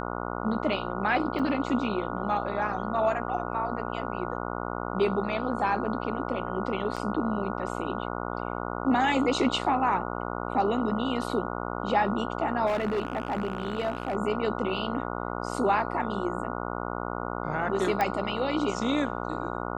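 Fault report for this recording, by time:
mains buzz 60 Hz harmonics 24 −33 dBFS
0:01.39: drop-out 4.8 ms
0:06.96–0:06.97: drop-out 6.3 ms
0:12.66–0:14.16: clipping −23.5 dBFS
0:18.01: click −13 dBFS

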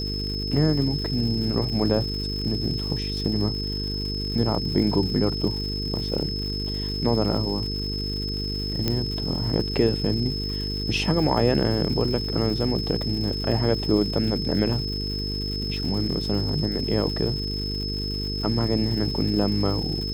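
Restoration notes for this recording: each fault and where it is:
mains buzz 50 Hz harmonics 9 −30 dBFS
surface crackle 250 per second −33 dBFS
whistle 5,200 Hz −30 dBFS
0:08.88: click −9 dBFS

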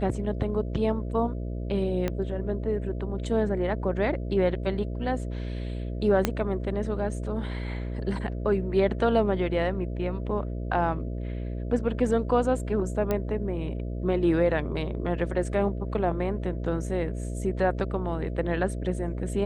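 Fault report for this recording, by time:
mains buzz 60 Hz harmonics 11 −32 dBFS
0:02.08: click −15 dBFS
0:06.25: click −8 dBFS
0:13.11: click −14 dBFS

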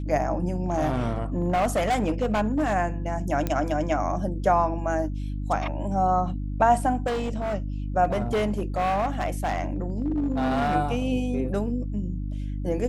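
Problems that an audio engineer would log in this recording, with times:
mains hum 50 Hz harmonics 6 −30 dBFS
0:00.66–0:02.74: clipping −19 dBFS
0:03.47: click −13 dBFS
0:07.06–0:07.55: clipping −24 dBFS
0:08.04–0:10.76: clipping −20.5 dBFS

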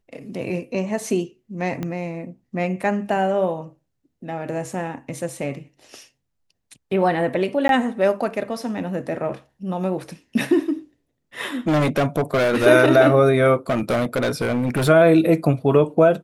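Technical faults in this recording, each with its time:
0:01.83: click −15 dBFS
0:07.68–0:07.69: drop-out 12 ms
0:11.67–0:12.67: clipping −15.5 dBFS
0:13.69–0:14.89: clipping −17 dBFS

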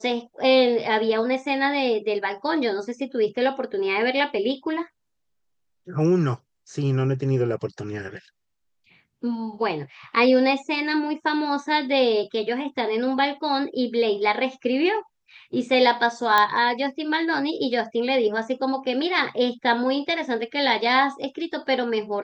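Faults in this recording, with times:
0:16.38: click −6 dBFS

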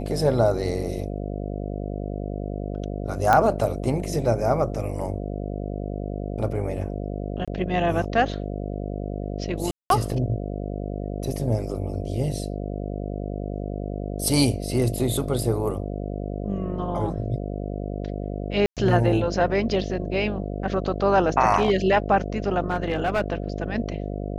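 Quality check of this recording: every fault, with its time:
mains buzz 50 Hz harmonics 14 −30 dBFS
0:03.33: click −7 dBFS
0:07.45–0:07.48: drop-out 26 ms
0:09.71–0:09.90: drop-out 192 ms
0:18.66–0:18.77: drop-out 107 ms
0:22.70–0:23.21: clipping −17 dBFS

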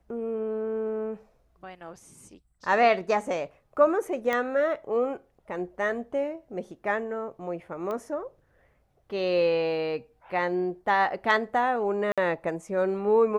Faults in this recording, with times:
0:04.33: click −15 dBFS
0:07.91: click −22 dBFS
0:12.12–0:12.18: drop-out 56 ms

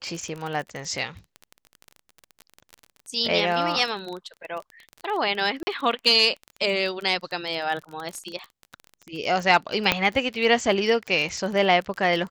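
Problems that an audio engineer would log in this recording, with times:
surface crackle 22 per second −29 dBFS
0:05.63–0:05.67: drop-out 40 ms
0:09.92: click −4 dBFS

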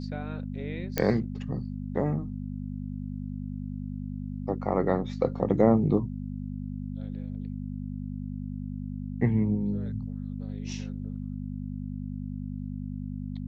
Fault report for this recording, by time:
mains hum 50 Hz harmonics 5 −35 dBFS
0:00.98: click −9 dBFS

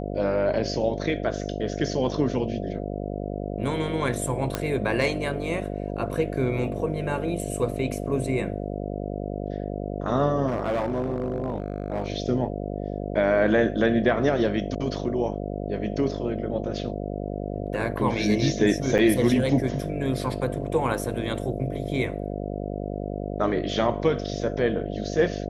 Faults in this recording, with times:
mains buzz 50 Hz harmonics 14 −31 dBFS
0:04.55: click −10 dBFS
0:10.47–0:12.08: clipping −21.5 dBFS
0:18.98–0:18.99: drop-out 7.5 ms

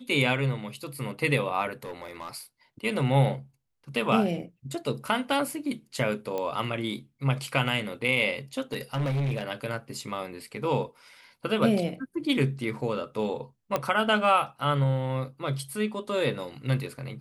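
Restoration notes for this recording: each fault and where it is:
0:01.73–0:02.29: clipping −32.5 dBFS
0:06.38: click −19 dBFS
0:08.73–0:09.43: clipping −24.5 dBFS
0:13.76: click −12 dBFS

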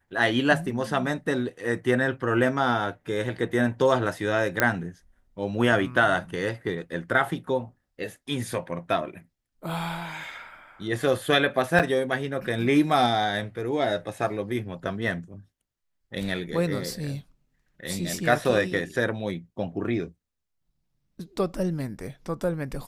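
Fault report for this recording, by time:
0:04.60: click −5 dBFS
0:11.79–0:11.80: drop-out 7.2 ms

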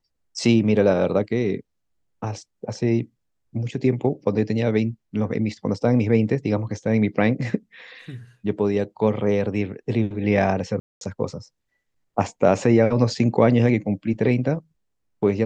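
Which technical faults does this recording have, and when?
0:10.80–0:11.01: drop-out 212 ms

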